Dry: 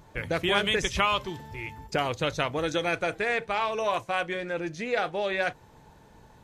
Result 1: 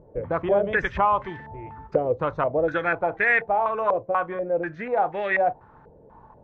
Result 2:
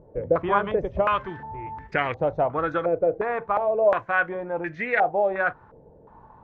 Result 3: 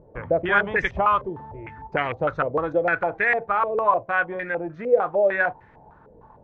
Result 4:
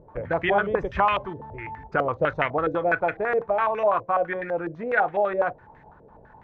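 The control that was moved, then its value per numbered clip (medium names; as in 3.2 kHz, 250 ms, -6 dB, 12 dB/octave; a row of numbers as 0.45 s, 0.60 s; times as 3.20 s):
step-sequenced low-pass, rate: 4.1 Hz, 2.8 Hz, 6.6 Hz, 12 Hz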